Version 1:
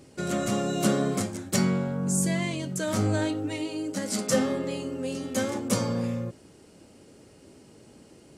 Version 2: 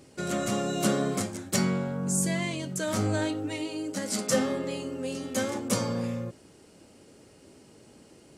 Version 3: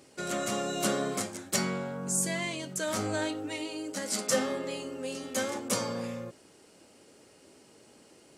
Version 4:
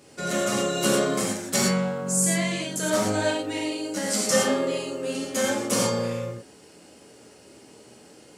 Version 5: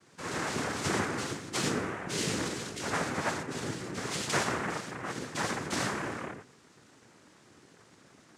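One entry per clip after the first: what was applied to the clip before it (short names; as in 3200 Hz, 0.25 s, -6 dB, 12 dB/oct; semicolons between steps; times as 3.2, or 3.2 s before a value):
low shelf 410 Hz -3 dB
low shelf 230 Hz -12 dB
non-linear reverb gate 0.14 s flat, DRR -3 dB; gain +2 dB
noise vocoder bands 3; gain -8 dB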